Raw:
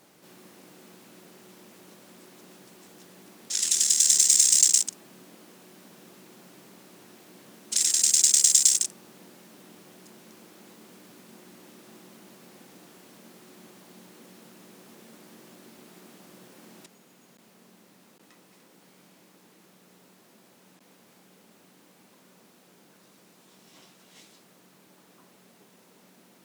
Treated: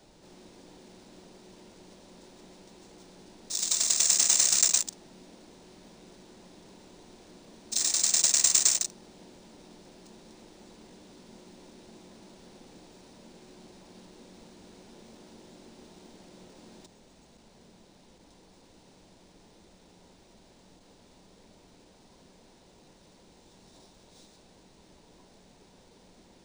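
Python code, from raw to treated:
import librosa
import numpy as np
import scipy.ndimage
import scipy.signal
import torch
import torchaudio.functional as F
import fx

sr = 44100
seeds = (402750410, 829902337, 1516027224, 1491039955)

y = fx.dmg_noise_colour(x, sr, seeds[0], colour='pink', level_db=-60.0)
y = scipy.signal.sosfilt(scipy.signal.cheby1(4, 1.0, [990.0, 3600.0], 'bandstop', fs=sr, output='sos'), y)
y = np.interp(np.arange(len(y)), np.arange(len(y))[::3], y[::3])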